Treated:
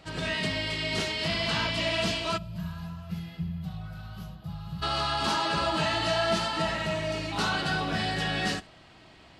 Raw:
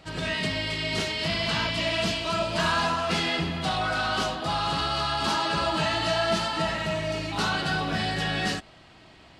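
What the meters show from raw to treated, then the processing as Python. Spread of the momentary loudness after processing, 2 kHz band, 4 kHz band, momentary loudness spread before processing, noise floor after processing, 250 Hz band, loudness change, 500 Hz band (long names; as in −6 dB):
12 LU, −3.0 dB, −2.5 dB, 3 LU, −53 dBFS, −2.5 dB, −2.5 dB, −3.0 dB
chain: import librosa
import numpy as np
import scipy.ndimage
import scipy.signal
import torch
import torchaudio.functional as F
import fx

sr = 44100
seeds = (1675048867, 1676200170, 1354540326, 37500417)

p1 = x + fx.echo_single(x, sr, ms=72, db=-22.0, dry=0)
p2 = fx.spec_box(p1, sr, start_s=2.37, length_s=2.45, low_hz=210.0, high_hz=11000.0, gain_db=-22)
y = F.gain(torch.from_numpy(p2), -1.5).numpy()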